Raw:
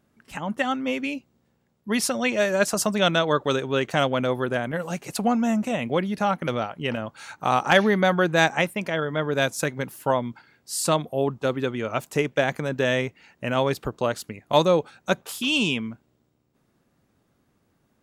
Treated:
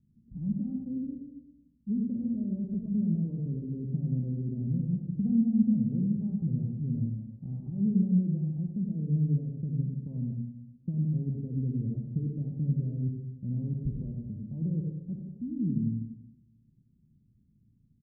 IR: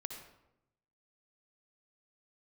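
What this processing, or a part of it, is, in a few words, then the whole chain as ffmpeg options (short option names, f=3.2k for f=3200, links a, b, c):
club heard from the street: -filter_complex "[0:a]alimiter=limit=-16dB:level=0:latency=1,lowpass=f=200:w=0.5412,lowpass=f=200:w=1.3066[a];[1:a]atrim=start_sample=2205[b];[a][b]afir=irnorm=-1:irlink=0,aecho=1:1:97:0.447,volume=6.5dB"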